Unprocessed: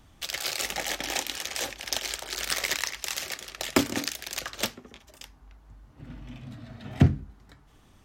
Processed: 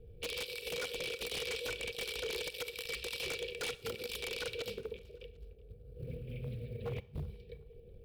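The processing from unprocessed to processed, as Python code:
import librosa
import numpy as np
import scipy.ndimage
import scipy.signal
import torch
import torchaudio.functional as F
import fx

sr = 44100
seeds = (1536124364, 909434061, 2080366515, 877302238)

y = scipy.signal.sosfilt(scipy.signal.ellip(3, 1.0, 40, [470.0, 2200.0], 'bandstop', fs=sr, output='sos'), x)
y = fx.hum_notches(y, sr, base_hz=50, count=4)
y = fx.env_lowpass(y, sr, base_hz=790.0, full_db=-28.5)
y = fx.over_compress(y, sr, threshold_db=-38.0, ratio=-0.5)
y = fx.small_body(y, sr, hz=(480.0, 790.0, 2300.0), ring_ms=50, db=17)
y = fx.dmg_buzz(y, sr, base_hz=60.0, harmonics=15, level_db=-67.0, tilt_db=-6, odd_only=False)
y = fx.quant_float(y, sr, bits=4)
y = fx.fixed_phaser(y, sr, hz=1400.0, stages=8)
y = 10.0 ** (-32.0 / 20.0) * (np.abs((y / 10.0 ** (-32.0 / 20.0) + 3.0) % 4.0 - 2.0) - 1.0)
y = fx.echo_feedback(y, sr, ms=374, feedback_pct=35, wet_db=-23)
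y = fx.rev_schroeder(y, sr, rt60_s=0.56, comb_ms=29, drr_db=17.5)
y = fx.doppler_dist(y, sr, depth_ms=0.16)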